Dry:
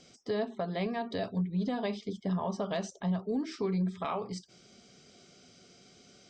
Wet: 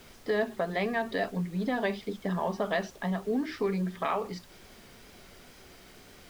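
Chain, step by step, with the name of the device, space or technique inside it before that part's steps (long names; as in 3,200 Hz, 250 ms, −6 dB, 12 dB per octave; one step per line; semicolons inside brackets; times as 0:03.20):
horn gramophone (band-pass filter 220–4,000 Hz; parametric band 1,800 Hz +9 dB 0.4 octaves; tape wow and flutter; pink noise bed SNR 22 dB)
level +4 dB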